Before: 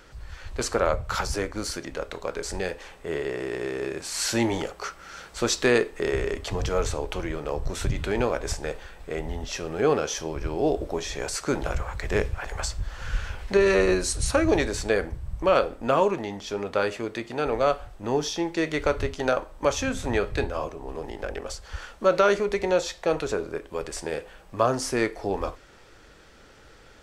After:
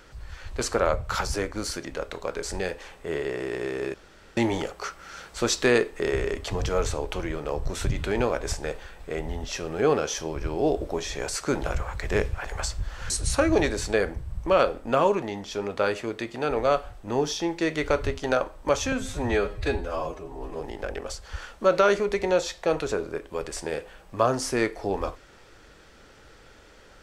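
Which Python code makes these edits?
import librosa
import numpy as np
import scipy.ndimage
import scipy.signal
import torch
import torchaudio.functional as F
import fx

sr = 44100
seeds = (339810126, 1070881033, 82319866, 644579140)

y = fx.edit(x, sr, fx.room_tone_fill(start_s=3.94, length_s=0.43),
    fx.cut(start_s=13.1, length_s=0.96),
    fx.stretch_span(start_s=19.88, length_s=1.12, factor=1.5), tone=tone)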